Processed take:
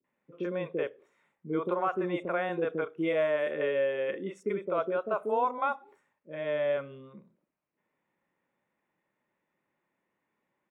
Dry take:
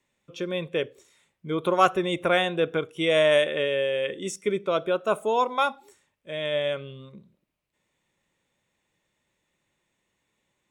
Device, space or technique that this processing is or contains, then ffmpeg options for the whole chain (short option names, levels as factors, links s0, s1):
DJ mixer with the lows and highs turned down: -filter_complex "[0:a]acrossover=split=170 2100:gain=0.126 1 0.0708[s0][s1][s2];[s0][s1][s2]amix=inputs=3:normalize=0,alimiter=limit=0.133:level=0:latency=1:release=240,acrossover=split=470|4300[s3][s4][s5];[s4]adelay=40[s6];[s5]adelay=70[s7];[s3][s6][s7]amix=inputs=3:normalize=0"